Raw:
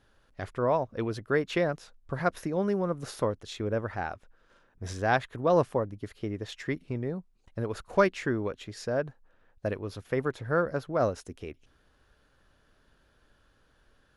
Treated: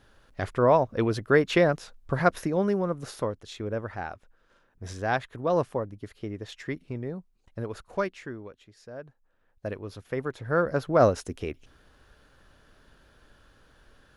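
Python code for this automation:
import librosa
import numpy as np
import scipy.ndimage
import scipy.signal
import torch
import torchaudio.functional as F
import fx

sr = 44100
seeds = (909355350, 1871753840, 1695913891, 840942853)

y = fx.gain(x, sr, db=fx.line((2.17, 6.0), (3.3, -1.5), (7.64, -1.5), (8.77, -14.5), (9.73, -2.0), (10.29, -2.0), (10.94, 7.0)))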